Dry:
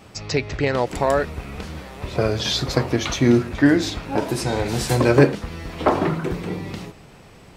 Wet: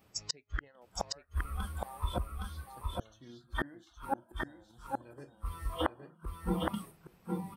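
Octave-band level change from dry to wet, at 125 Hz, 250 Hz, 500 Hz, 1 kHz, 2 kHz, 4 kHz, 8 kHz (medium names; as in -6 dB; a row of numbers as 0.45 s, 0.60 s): -17.5 dB, -20.5 dB, -22.0 dB, -13.0 dB, -16.5 dB, -16.5 dB, -14.5 dB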